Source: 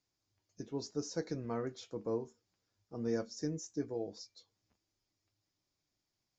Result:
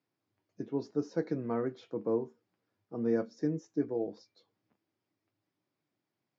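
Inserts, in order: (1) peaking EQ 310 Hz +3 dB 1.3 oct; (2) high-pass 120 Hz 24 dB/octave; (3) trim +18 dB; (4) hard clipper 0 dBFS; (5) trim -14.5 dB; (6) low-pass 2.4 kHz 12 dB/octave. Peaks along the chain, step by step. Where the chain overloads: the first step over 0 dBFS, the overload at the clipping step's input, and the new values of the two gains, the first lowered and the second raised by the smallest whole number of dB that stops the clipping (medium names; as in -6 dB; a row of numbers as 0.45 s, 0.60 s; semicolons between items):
-21.0 dBFS, -21.5 dBFS, -3.5 dBFS, -3.5 dBFS, -18.0 dBFS, -18.0 dBFS; nothing clips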